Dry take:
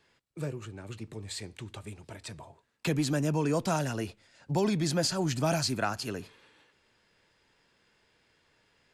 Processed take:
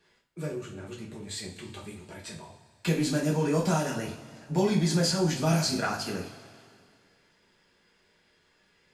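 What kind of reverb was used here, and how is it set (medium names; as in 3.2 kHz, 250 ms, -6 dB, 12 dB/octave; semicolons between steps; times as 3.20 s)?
two-slope reverb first 0.4 s, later 2.3 s, from -18 dB, DRR -3.5 dB; trim -3 dB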